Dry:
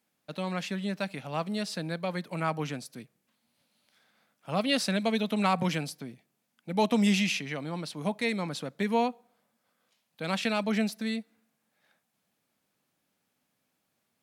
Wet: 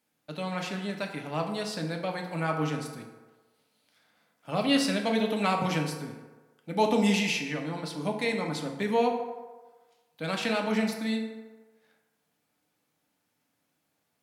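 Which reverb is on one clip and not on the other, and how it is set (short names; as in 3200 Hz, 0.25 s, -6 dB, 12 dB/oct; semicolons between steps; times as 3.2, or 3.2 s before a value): FDN reverb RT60 1.3 s, low-frequency decay 0.7×, high-frequency decay 0.5×, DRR 1.5 dB; gain -1 dB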